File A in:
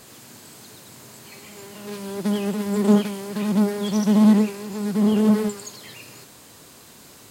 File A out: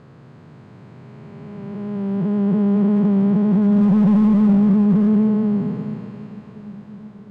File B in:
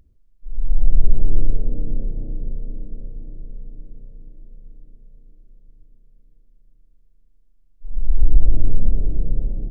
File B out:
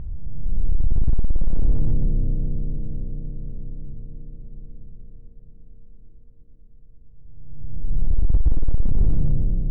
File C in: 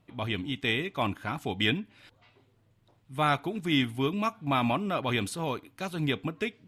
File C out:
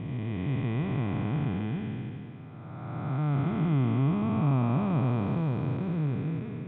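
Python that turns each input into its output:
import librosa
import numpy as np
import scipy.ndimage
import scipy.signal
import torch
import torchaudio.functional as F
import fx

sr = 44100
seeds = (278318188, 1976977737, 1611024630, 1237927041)

y = fx.spec_blur(x, sr, span_ms=882.0)
y = scipy.signal.sosfilt(scipy.signal.butter(2, 1600.0, 'lowpass', fs=sr, output='sos'), y)
y = fx.peak_eq(y, sr, hz=140.0, db=13.0, octaves=1.1)
y = np.clip(10.0 ** (12.5 / 20.0) * y, -1.0, 1.0) / 10.0 ** (12.5 / 20.0)
y = fx.echo_swing(y, sr, ms=1125, ratio=1.5, feedback_pct=61, wet_db=-23.5)
y = F.gain(torch.from_numpy(y), 1.5).numpy()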